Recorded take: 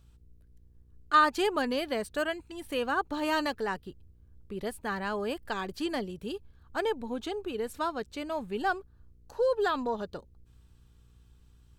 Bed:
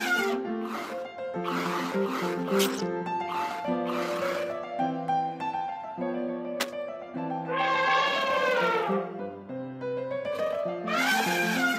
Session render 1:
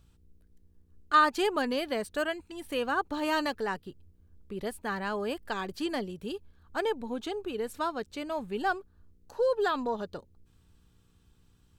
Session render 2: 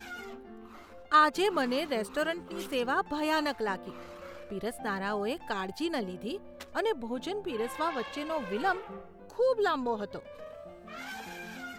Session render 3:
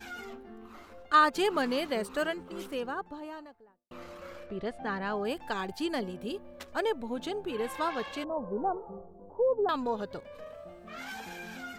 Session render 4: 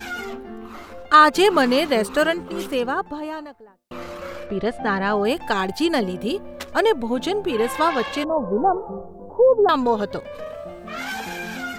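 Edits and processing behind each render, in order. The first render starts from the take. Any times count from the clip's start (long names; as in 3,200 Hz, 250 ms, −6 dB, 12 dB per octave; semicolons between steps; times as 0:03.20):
hum removal 60 Hz, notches 2
mix in bed −16.5 dB
0:02.08–0:03.91: fade out and dull; 0:04.46–0:05.25: high-frequency loss of the air 120 metres; 0:08.24–0:09.69: Butterworth low-pass 1,000 Hz
level +12 dB; brickwall limiter −3 dBFS, peak gain reduction 2.5 dB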